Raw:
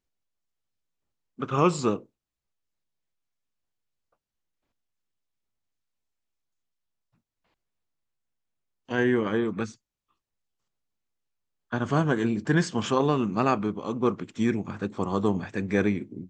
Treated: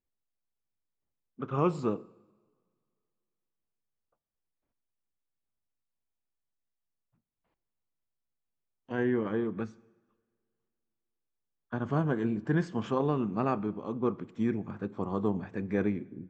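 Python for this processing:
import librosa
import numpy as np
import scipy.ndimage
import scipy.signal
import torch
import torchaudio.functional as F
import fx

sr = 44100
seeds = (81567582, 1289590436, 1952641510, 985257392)

y = fx.lowpass(x, sr, hz=1200.0, slope=6)
y = fx.rev_double_slope(y, sr, seeds[0], early_s=0.99, late_s=2.5, knee_db=-18, drr_db=19.0)
y = y * librosa.db_to_amplitude(-4.5)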